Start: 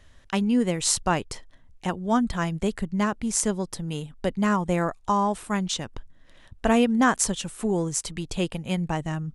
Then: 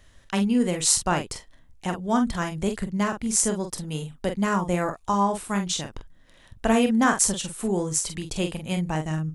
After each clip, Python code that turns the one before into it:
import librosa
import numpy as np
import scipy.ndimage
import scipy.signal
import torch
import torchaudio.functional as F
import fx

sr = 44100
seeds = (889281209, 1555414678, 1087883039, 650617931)

y = fx.high_shelf(x, sr, hz=7800.0, db=7.5)
y = fx.room_early_taps(y, sr, ms=(26, 45), db=(-15.0, -7.0))
y = y * librosa.db_to_amplitude(-1.0)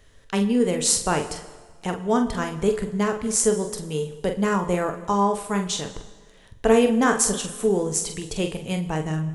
y = fx.peak_eq(x, sr, hz=440.0, db=12.5, octaves=0.22)
y = fx.rev_plate(y, sr, seeds[0], rt60_s=1.5, hf_ratio=0.85, predelay_ms=0, drr_db=11.0)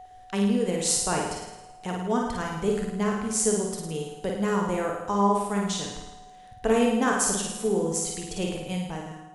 y = fx.fade_out_tail(x, sr, length_s=0.64)
y = y + 10.0 ** (-37.0 / 20.0) * np.sin(2.0 * np.pi * 740.0 * np.arange(len(y)) / sr)
y = fx.room_flutter(y, sr, wall_m=9.4, rt60_s=0.85)
y = y * librosa.db_to_amplitude(-5.5)